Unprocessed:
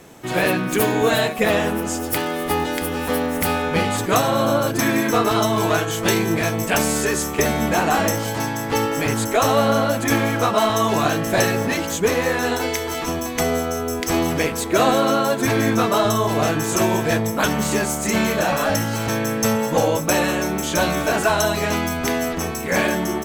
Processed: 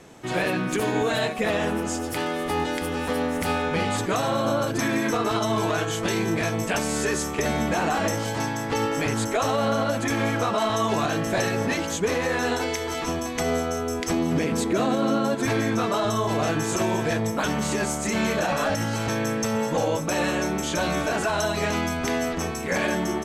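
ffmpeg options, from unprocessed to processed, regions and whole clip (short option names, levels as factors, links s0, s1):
-filter_complex "[0:a]asettb=1/sr,asplit=3[s0][s1][s2];[s0]atrim=end=14.114[s3];[s1]atrim=start=14.11:end=15.35,asetpts=PTS-STARTPTS,afade=t=in:d=0.004:c=qsin,afade=t=out:st=1.236:d=0.004:c=qsin,highpass=74,equalizer=f=210:w=0.83:g=10[s4];[s2]atrim=start=15.346[s5];[s3][s4]acrossfade=d=0.004:c1=hsin:c2=qsin[s6];[s6][s5]acrossfade=d=0.004:c1=qsin:c2=hsin,alimiter=limit=0.266:level=0:latency=1:release=64,lowpass=8900,volume=0.708"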